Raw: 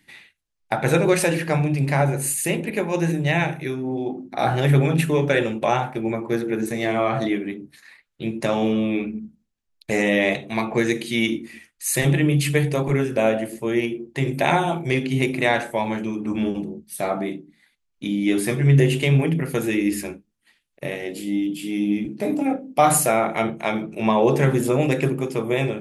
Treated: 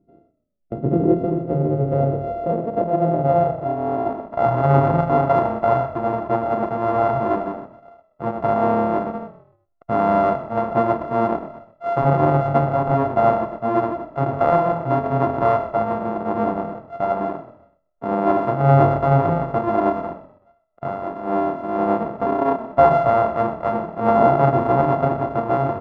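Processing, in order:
samples sorted by size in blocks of 64 samples
low-pass filter sweep 340 Hz → 960 Hz, 0:00.70–0:04.47
echo with shifted repeats 125 ms, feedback 35%, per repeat −39 Hz, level −15 dB

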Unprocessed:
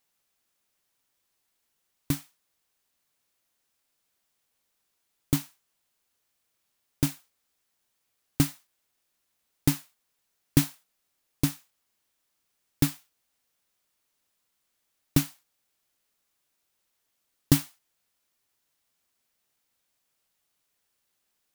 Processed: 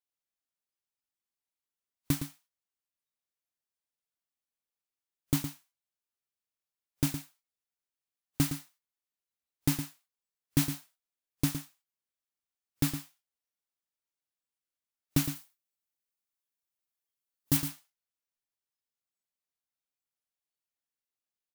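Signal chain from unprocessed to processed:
noise reduction from a noise print of the clip's start 19 dB
0:15.24–0:17.57: high-shelf EQ 8,600 Hz +7 dB
brickwall limiter −12.5 dBFS, peak gain reduction 11 dB
single-tap delay 113 ms −9.5 dB

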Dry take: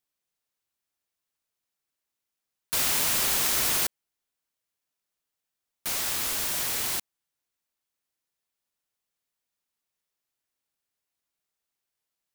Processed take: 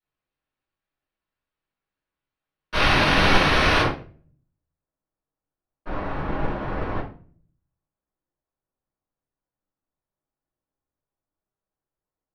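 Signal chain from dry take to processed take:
sub-octave generator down 1 octave, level −3 dB
parametric band 2,300 Hz −2 dB 0.24 octaves
bad sample-rate conversion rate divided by 6×, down filtered, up hold
low-pass filter 4,200 Hz 12 dB per octave, from 0:03.81 1,000 Hz
rectangular room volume 65 cubic metres, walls mixed, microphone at 2.7 metres
expander for the loud parts 1.5 to 1, over −42 dBFS
level +5 dB

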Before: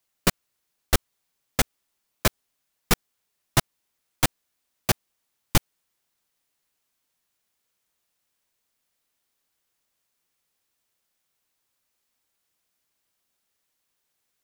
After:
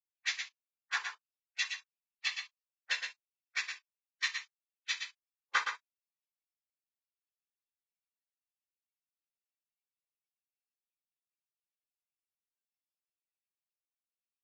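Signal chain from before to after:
running median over 15 samples
gate on every frequency bin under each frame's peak −25 dB weak
high-pass filter 1,300 Hz 12 dB per octave
brickwall limiter −22.5 dBFS, peak gain reduction 4 dB
formants moved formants −2 semitones
random phases in short frames
single-tap delay 117 ms −6.5 dB
convolution reverb, pre-delay 3 ms, DRR −2.5 dB
Ogg Vorbis 32 kbit/s 16,000 Hz

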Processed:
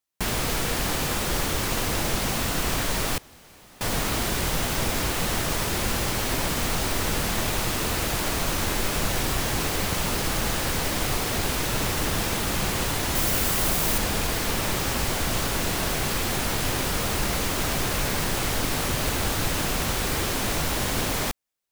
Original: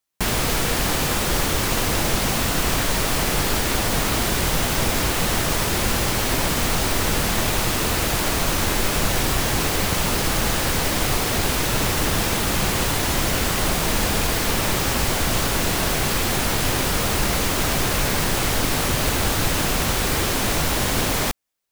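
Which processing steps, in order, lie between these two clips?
0:03.18–0:03.81: fill with room tone
0:13.15–0:13.98: high-shelf EQ 9,600 Hz +9.5 dB
level −4.5 dB

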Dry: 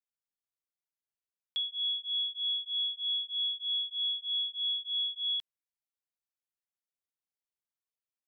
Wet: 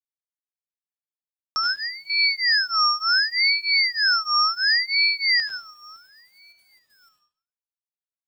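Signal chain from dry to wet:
delay with a low-pass on its return 562 ms, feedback 40%, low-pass 2,900 Hz, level −21 dB
0:01.70–0:02.10: downward compressor 16 to 1, threshold −46 dBFS, peak gain reduction 16.5 dB
bit reduction 12 bits
high-shelf EQ 3,100 Hz +9.5 dB
convolution reverb RT60 0.55 s, pre-delay 72 ms, DRR −1 dB
ring modulator whose carrier an LFO sweeps 1,600 Hz, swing 35%, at 0.69 Hz
level +4.5 dB

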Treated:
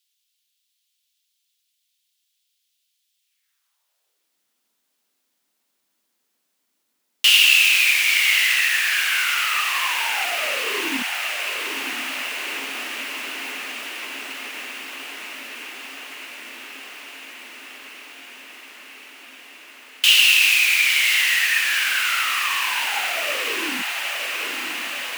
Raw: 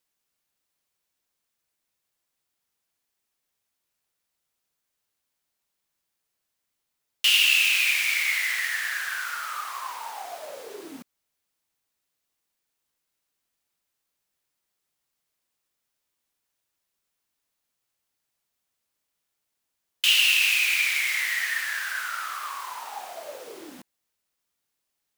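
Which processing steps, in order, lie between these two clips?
high-pass filter sweep 3,300 Hz → 240 Hz, 0:03.19–0:04.39
feedback delay with all-pass diffusion 963 ms, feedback 78%, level −7 dB
level +5.5 dB

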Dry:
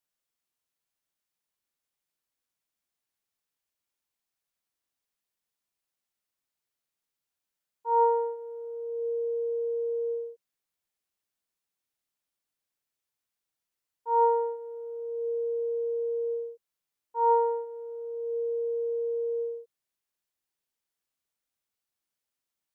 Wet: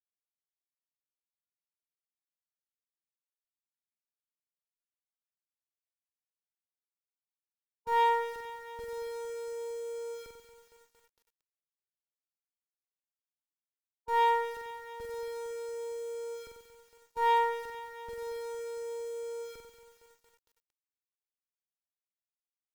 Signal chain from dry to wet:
downward expander −32 dBFS
parametric band 610 Hz +5.5 dB 0.4 octaves
in parallel at −8.5 dB: comparator with hysteresis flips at −37.5 dBFS
on the sum: flutter between parallel walls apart 7.9 metres, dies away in 0.72 s
harmonic generator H 3 −33 dB, 4 −15 dB, 5 −32 dB, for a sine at −11 dBFS
feedback echo at a low word length 229 ms, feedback 80%, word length 8 bits, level −12.5 dB
level −7 dB

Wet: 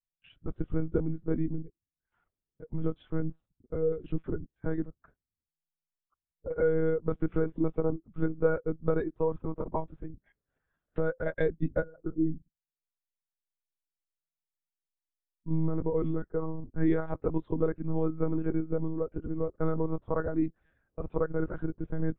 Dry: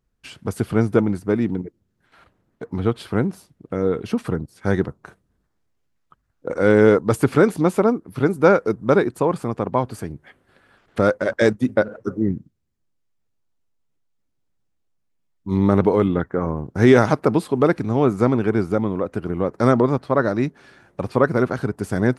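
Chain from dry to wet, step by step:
downward compressor 6 to 1, threshold −18 dBFS, peak gain reduction 10.5 dB
one-pitch LPC vocoder at 8 kHz 160 Hz
every bin expanded away from the loudest bin 1.5 to 1
level −5.5 dB

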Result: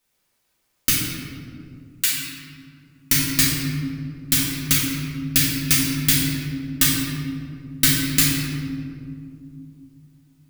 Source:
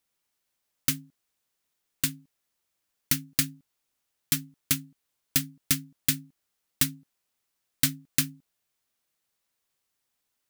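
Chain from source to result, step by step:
0:00.89–0:02.13: high-pass filter 1,400 Hz 12 dB per octave
convolution reverb RT60 2.6 s, pre-delay 4 ms, DRR −7.5 dB
level +3.5 dB

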